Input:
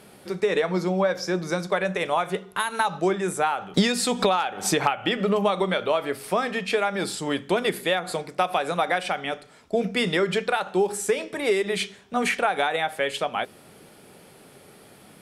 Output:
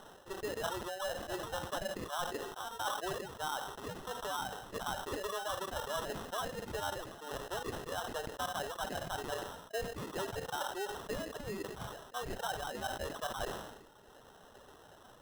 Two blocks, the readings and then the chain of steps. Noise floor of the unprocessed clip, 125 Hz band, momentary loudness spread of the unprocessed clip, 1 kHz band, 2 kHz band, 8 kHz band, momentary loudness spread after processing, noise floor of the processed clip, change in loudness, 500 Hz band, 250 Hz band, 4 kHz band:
−51 dBFS, −14.5 dB, 6 LU, −13.0 dB, −15.0 dB, −12.0 dB, 8 LU, −58 dBFS, −15.0 dB, −15.5 dB, −19.0 dB, −13.0 dB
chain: high-pass filter 410 Hz 24 dB per octave
spectral tilt +4 dB per octave
reversed playback
downward compressor 6 to 1, threshold −35 dBFS, peak gain reduction 22 dB
reversed playback
high-frequency loss of the air 470 metres
reverb reduction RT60 1.7 s
sample-rate reduction 2,300 Hz, jitter 0%
level that may fall only so fast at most 54 dB per second
level +2.5 dB

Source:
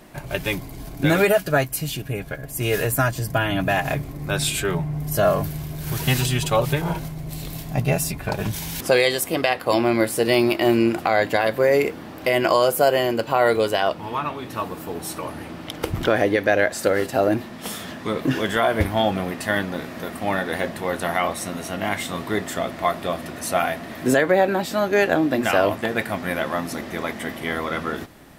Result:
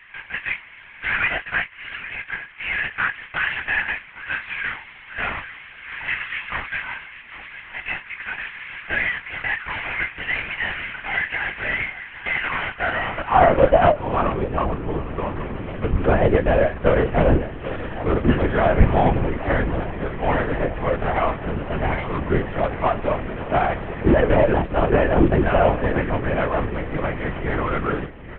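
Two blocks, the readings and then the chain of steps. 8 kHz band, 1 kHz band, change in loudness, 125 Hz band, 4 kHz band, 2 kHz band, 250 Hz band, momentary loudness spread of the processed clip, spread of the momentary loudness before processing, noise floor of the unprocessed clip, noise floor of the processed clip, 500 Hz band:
below −40 dB, +1.0 dB, 0.0 dB, +1.5 dB, −6.5 dB, +2.0 dB, −1.0 dB, 13 LU, 11 LU, −37 dBFS, −43 dBFS, −1.0 dB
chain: variable-slope delta modulation 16 kbit/s
high-pass filter sweep 1,900 Hz → 70 Hz, 0:12.66–0:15.54
high-frequency loss of the air 210 metres
double-tracking delay 28 ms −10.5 dB
single-tap delay 808 ms −14.5 dB
linear-prediction vocoder at 8 kHz whisper
level +4.5 dB

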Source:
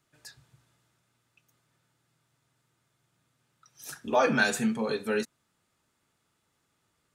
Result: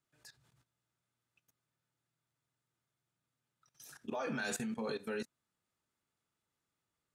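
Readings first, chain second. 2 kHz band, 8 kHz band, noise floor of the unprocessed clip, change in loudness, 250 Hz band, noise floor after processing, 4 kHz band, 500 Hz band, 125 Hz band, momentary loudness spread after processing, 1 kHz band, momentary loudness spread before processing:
−13.5 dB, −7.5 dB, −76 dBFS, −12.5 dB, −10.5 dB, below −85 dBFS, −11.0 dB, −12.0 dB, −10.0 dB, 20 LU, −14.5 dB, 18 LU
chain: output level in coarse steps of 17 dB
level −3.5 dB

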